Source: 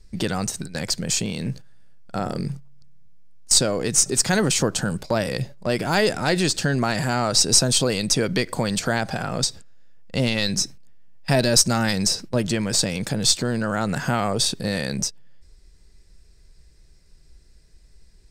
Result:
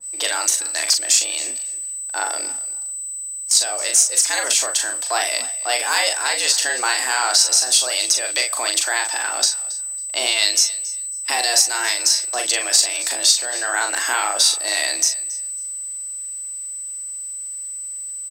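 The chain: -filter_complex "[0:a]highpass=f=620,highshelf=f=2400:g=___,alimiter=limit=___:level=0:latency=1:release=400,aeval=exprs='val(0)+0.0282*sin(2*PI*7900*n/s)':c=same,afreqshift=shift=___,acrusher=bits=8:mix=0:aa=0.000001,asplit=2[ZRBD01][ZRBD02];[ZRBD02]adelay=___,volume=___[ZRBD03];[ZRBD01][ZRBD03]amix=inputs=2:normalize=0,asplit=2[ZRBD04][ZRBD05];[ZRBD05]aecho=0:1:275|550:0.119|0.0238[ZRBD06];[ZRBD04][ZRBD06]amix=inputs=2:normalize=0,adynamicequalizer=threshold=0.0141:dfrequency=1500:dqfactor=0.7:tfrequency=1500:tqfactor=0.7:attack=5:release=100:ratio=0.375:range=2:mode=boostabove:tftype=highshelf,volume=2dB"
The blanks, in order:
4.5, -10dB, 120, 40, -5dB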